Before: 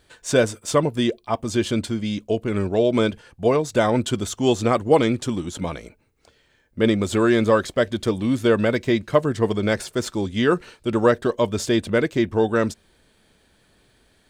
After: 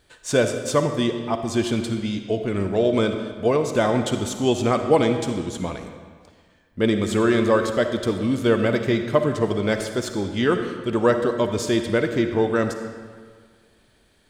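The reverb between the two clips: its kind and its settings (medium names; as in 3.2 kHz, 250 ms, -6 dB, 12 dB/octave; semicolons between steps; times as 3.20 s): algorithmic reverb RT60 1.7 s, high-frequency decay 0.8×, pre-delay 15 ms, DRR 6.5 dB; trim -1.5 dB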